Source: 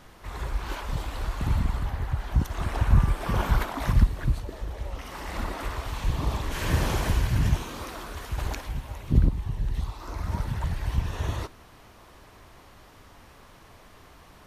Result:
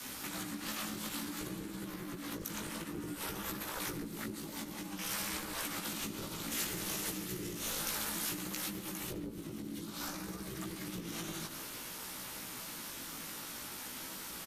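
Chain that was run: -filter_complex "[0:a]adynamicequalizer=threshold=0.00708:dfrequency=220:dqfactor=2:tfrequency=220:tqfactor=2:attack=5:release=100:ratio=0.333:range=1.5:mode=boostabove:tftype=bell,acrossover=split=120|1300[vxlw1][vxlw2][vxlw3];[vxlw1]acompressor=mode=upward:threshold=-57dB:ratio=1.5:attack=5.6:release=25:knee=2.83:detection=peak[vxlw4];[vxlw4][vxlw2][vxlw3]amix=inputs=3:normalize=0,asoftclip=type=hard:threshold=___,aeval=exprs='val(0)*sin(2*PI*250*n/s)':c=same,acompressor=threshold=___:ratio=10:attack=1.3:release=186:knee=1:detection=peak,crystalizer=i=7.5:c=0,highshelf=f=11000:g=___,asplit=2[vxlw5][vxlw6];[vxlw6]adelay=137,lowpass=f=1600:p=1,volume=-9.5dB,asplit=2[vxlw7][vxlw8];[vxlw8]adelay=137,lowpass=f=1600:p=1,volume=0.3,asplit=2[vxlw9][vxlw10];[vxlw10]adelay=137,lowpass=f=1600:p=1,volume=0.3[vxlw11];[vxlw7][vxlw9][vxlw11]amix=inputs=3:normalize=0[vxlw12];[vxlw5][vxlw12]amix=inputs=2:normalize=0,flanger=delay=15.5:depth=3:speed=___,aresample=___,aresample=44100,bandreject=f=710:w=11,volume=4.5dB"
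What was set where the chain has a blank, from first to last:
-14.5dB, -40dB, 2.5, 0.57, 32000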